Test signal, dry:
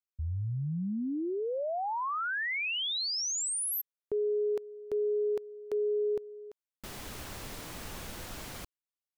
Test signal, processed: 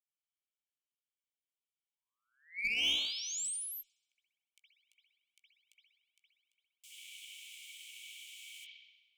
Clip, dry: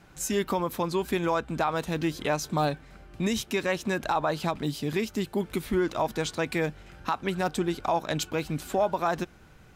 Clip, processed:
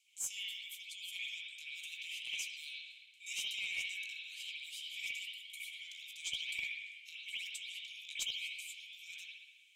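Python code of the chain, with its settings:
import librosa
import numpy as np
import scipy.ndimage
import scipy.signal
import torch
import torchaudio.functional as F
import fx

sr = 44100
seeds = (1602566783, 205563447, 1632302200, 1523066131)

y = scipy.signal.sosfilt(scipy.signal.cheby1(6, 9, 2200.0, 'highpass', fs=sr, output='sos'), x)
y = fx.doubler(y, sr, ms=17.0, db=-12)
y = fx.echo_bbd(y, sr, ms=231, stages=4096, feedback_pct=35, wet_db=-17.5)
y = fx.rev_spring(y, sr, rt60_s=1.1, pass_ms=(57,), chirp_ms=65, drr_db=-9.5)
y = fx.cheby_harmonics(y, sr, harmonics=(2, 3, 5, 8), levels_db=(-18, -24, -35, -37), full_scale_db=-21.0)
y = y * librosa.db_to_amplitude(-3.5)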